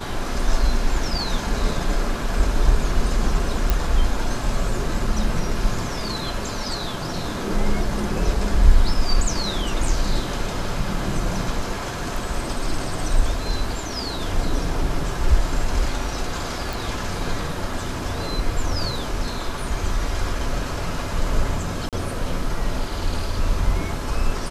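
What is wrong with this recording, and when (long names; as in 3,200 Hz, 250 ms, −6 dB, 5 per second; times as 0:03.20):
0:03.70: click
0:16.73: click
0:21.89–0:21.93: drop-out 37 ms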